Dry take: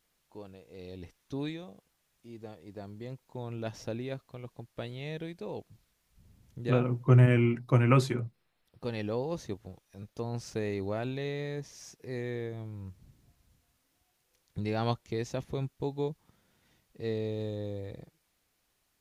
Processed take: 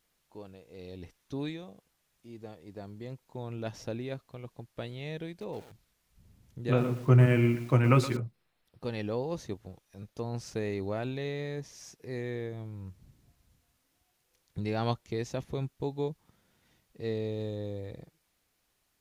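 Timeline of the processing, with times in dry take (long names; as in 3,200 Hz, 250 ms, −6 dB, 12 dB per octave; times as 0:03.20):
0:05.29–0:08.17: feedback echo at a low word length 118 ms, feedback 35%, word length 7 bits, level −12 dB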